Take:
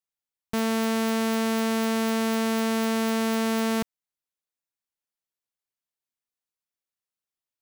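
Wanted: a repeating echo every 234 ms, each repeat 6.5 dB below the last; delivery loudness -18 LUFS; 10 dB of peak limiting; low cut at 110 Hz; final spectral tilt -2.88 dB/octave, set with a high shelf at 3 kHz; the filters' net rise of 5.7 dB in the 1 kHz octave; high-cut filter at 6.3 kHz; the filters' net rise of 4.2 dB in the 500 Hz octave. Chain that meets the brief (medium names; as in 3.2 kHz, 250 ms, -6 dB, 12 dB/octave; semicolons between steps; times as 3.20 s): high-pass 110 Hz; low-pass 6.3 kHz; peaking EQ 500 Hz +3.5 dB; peaking EQ 1 kHz +5 dB; treble shelf 3 kHz +8 dB; peak limiter -20 dBFS; feedback delay 234 ms, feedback 47%, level -6.5 dB; trim +15 dB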